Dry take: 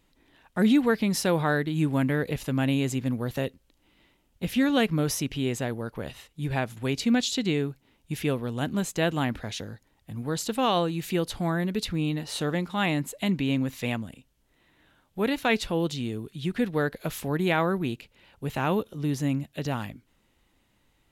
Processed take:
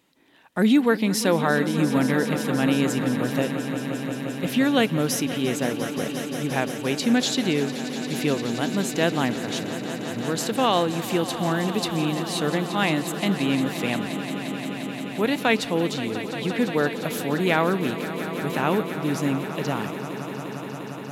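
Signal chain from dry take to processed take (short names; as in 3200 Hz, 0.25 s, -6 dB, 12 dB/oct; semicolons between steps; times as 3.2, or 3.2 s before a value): HPF 170 Hz 12 dB/oct; on a send: swelling echo 0.175 s, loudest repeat 5, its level -14 dB; on the sum: gain +3.5 dB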